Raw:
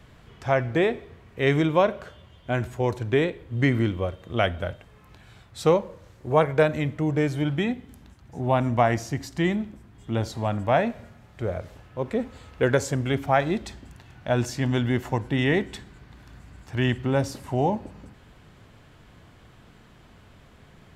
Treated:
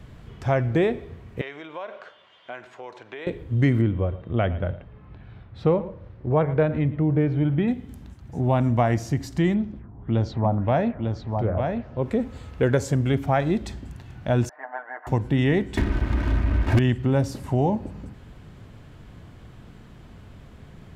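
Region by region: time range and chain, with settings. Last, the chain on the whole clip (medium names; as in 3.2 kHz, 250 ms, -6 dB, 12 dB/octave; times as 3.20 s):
1.41–3.27 s: compression 8:1, threshold -27 dBFS + band-pass 740–4000 Hz + tape noise reduction on one side only encoder only
3.81–7.68 s: distance through air 350 m + delay 112 ms -18 dB
9.54–12.03 s: LFO low-pass sine 1.8 Hz 820–5900 Hz + treble shelf 2.3 kHz -10 dB + delay 899 ms -6.5 dB
14.49–15.07 s: elliptic band-pass 680–1800 Hz, stop band 70 dB + tilt EQ -4 dB/octave + comb 6.6 ms, depth 75%
15.77–16.79 s: low-pass 2.8 kHz 24 dB/octave + comb 3.2 ms, depth 90% + waveshaping leveller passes 5
whole clip: bass shelf 410 Hz +8.5 dB; compression 1.5:1, threshold -23 dBFS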